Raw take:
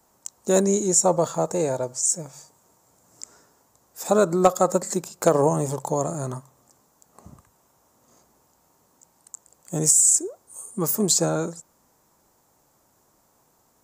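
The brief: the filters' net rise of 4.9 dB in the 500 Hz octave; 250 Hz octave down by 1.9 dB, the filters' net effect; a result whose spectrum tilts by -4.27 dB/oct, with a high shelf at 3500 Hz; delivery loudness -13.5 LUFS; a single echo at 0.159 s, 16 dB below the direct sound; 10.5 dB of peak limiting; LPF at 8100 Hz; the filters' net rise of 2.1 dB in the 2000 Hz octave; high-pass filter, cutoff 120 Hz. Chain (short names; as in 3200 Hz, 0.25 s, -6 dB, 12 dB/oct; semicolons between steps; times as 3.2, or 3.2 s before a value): HPF 120 Hz; LPF 8100 Hz; bell 250 Hz -6.5 dB; bell 500 Hz +7.5 dB; bell 2000 Hz +4 dB; high shelf 3500 Hz -5.5 dB; limiter -10.5 dBFS; echo 0.159 s -16 dB; gain +9.5 dB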